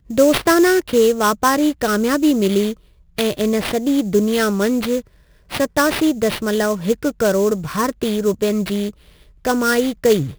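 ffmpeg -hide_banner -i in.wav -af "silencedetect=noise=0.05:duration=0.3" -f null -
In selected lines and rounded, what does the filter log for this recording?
silence_start: 2.73
silence_end: 3.18 | silence_duration: 0.45
silence_start: 5.00
silence_end: 5.52 | silence_duration: 0.52
silence_start: 8.90
silence_end: 9.45 | silence_duration: 0.55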